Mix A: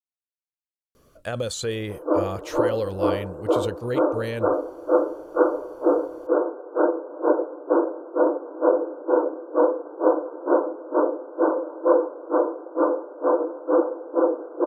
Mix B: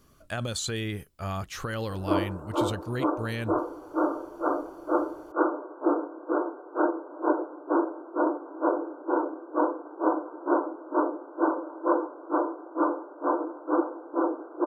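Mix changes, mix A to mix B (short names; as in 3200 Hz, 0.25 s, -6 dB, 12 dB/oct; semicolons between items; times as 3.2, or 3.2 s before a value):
speech: entry -0.95 s; master: add bell 500 Hz -12 dB 0.53 oct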